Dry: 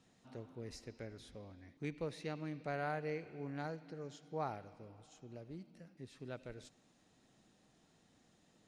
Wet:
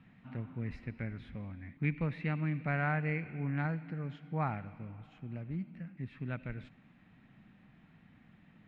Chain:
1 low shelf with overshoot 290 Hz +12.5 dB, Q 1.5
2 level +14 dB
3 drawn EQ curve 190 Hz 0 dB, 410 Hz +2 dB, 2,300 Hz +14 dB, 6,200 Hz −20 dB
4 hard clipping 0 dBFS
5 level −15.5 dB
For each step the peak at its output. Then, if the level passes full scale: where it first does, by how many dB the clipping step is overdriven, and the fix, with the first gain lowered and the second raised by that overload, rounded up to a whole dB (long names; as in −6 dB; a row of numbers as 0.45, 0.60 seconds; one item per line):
−22.0, −8.0, −5.0, −5.0, −20.5 dBFS
no step passes full scale